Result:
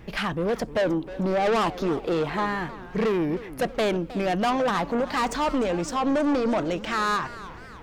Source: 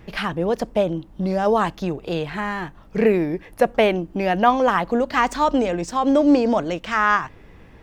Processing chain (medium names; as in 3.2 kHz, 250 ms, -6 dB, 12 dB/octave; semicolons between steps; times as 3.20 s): time-frequency box 0.74–2.46 s, 220–1300 Hz +6 dB; saturation -20 dBFS, distortion -7 dB; modulated delay 311 ms, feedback 51%, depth 212 cents, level -16 dB